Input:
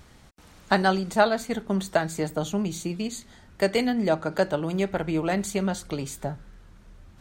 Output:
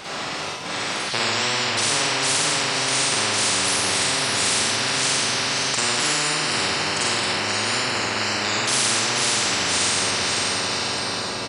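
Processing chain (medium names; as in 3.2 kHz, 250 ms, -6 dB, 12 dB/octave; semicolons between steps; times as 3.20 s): wide varispeed 0.627×; high-pass 180 Hz 12 dB/octave; wow and flutter 100 cents; bass shelf 410 Hz -10 dB; doubling 46 ms -3.5 dB; echo that smears into a reverb 534 ms, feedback 50%, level -10.5 dB; Schroeder reverb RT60 0.86 s, DRR -8 dB; spectrum-flattening compressor 10:1; trim -6.5 dB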